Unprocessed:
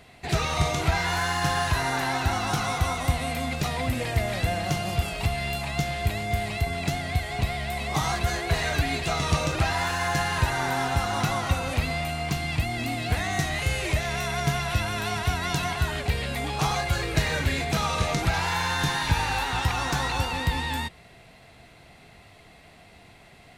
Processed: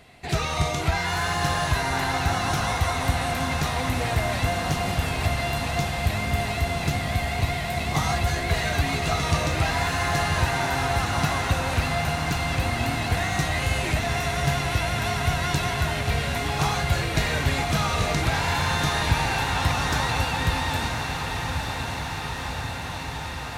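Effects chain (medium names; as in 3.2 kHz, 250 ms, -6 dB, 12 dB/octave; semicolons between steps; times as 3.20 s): echo that smears into a reverb 982 ms, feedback 78%, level -6 dB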